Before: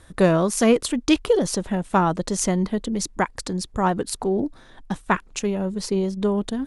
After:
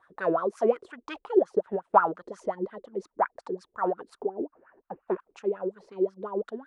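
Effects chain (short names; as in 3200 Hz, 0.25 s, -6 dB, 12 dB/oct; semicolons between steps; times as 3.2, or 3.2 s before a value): wah 5.6 Hz 360–1500 Hz, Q 8.5; 1.41–2 transient shaper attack +5 dB, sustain -5 dB; 4.22–5.08 brick-wall FIR low-pass 3000 Hz; gain +5.5 dB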